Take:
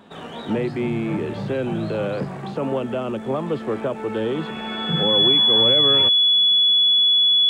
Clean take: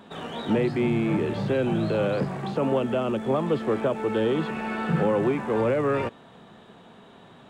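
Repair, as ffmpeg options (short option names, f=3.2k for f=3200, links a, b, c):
-af "bandreject=f=3.4k:w=30"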